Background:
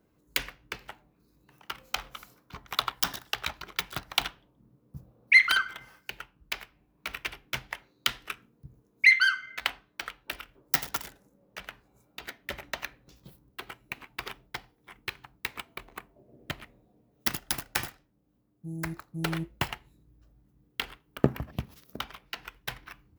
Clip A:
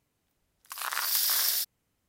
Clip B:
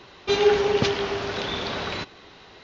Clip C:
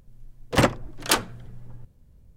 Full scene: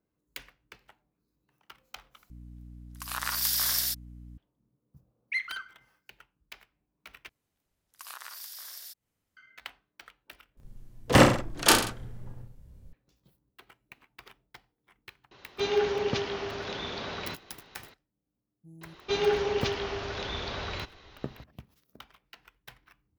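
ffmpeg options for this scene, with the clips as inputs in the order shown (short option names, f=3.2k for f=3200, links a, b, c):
-filter_complex "[1:a]asplit=2[a][b];[2:a]asplit=2[c][d];[0:a]volume=-13.5dB[e];[a]aeval=exprs='val(0)+0.00631*(sin(2*PI*60*n/s)+sin(2*PI*2*60*n/s)/2+sin(2*PI*3*60*n/s)/3+sin(2*PI*4*60*n/s)/4+sin(2*PI*5*60*n/s)/5)':c=same[f];[b]acompressor=threshold=-38dB:ratio=8:attack=72:release=234:knee=1:detection=rms[g];[3:a]aecho=1:1:30|63|99.3|139.2|183.2:0.631|0.398|0.251|0.158|0.1[h];[d]asubboost=boost=8:cutoff=85[i];[e]asplit=4[j][k][l][m];[j]atrim=end=2.304[n];[f]atrim=end=2.08,asetpts=PTS-STARTPTS,volume=-1dB[o];[k]atrim=start=4.376:end=7.294[p];[g]atrim=end=2.08,asetpts=PTS-STARTPTS,volume=-5.5dB[q];[l]atrim=start=9.366:end=10.574[r];[h]atrim=end=2.36[s];[m]atrim=start=12.926[t];[c]atrim=end=2.63,asetpts=PTS-STARTPTS,volume=-7.5dB,afade=t=in:d=0.004:c=hsin,afade=t=out:st=2.626:d=0.004:c=hsin,adelay=15310[u];[i]atrim=end=2.63,asetpts=PTS-STARTPTS,volume=-6.5dB,afade=t=in:d=0.004:c=hsin,afade=t=out:st=2.626:d=0.004:c=hsin,adelay=18810[v];[n][o]acrossfade=d=0.004:c1=hsin:c2=hsin[w];[w][p]acrossfade=d=0.004:c1=hsin:c2=hsin[x];[x][q]acrossfade=d=0.004:c1=hsin:c2=hsin[y];[y][r]acrossfade=d=0.004:c1=hsin:c2=hsin[z];[z][s]acrossfade=d=0.004:c1=hsin:c2=hsin[aa];[aa][t]acrossfade=d=0.004:c1=hsin:c2=hsin[ab];[ab][u][v]amix=inputs=3:normalize=0"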